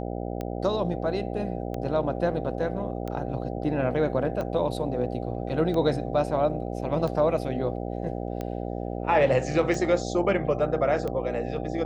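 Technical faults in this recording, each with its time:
buzz 60 Hz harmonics 13 -32 dBFS
tick 45 rpm -20 dBFS

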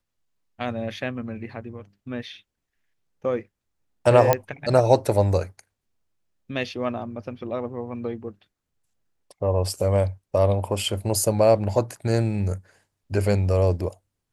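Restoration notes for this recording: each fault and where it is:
4.33 s: pop -4 dBFS

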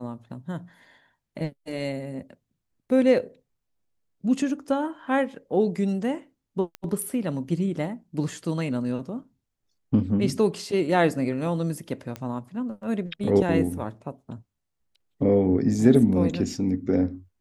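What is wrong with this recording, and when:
6.75 s: pop -20 dBFS
12.16 s: pop -19 dBFS

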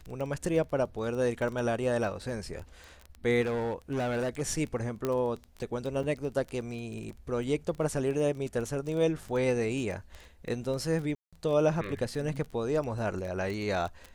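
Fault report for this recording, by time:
crackle 15 per s -34 dBFS
3.41–4.42 s: clipped -27.5 dBFS
5.05 s: pop -17 dBFS
6.03 s: dropout 4.4 ms
11.15–11.33 s: dropout 176 ms

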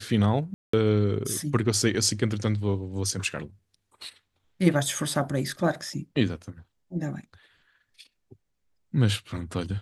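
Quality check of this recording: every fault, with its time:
0.54–0.73 s: dropout 194 ms

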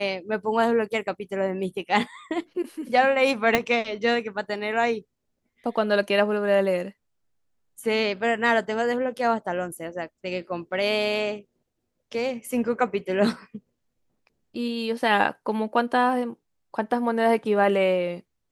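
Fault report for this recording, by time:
3.55 s: pop -5 dBFS

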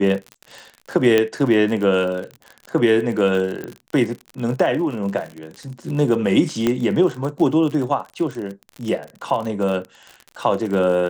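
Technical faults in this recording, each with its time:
crackle 50 per s -27 dBFS
1.18 s: pop -5 dBFS
3.64 s: pop -17 dBFS
6.67 s: pop -6 dBFS

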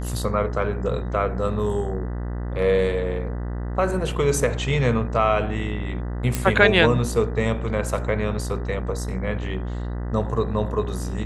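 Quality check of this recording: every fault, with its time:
buzz 60 Hz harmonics 33 -28 dBFS
6.35 s: pop

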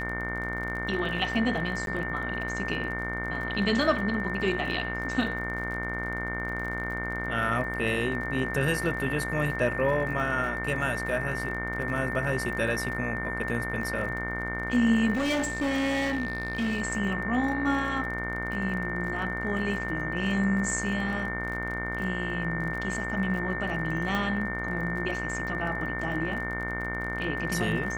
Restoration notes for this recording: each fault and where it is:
buzz 60 Hz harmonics 38 -35 dBFS
crackle 38 per s -36 dBFS
whine 1.8 kHz -33 dBFS
1.86–1.87 s: dropout 12 ms
15.13–16.82 s: clipped -24 dBFS
24.15 s: pop -16 dBFS

